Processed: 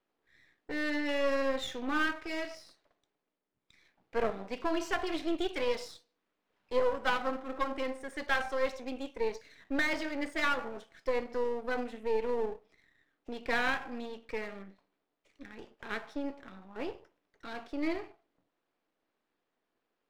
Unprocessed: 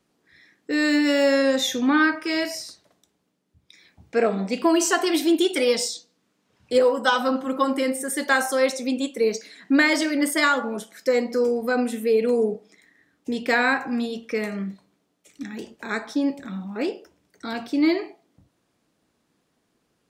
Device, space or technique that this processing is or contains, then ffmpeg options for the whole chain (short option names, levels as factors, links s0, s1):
crystal radio: -af "highpass=360,lowpass=3100,aeval=exprs='if(lt(val(0),0),0.251*val(0),val(0))':c=same,volume=0.501"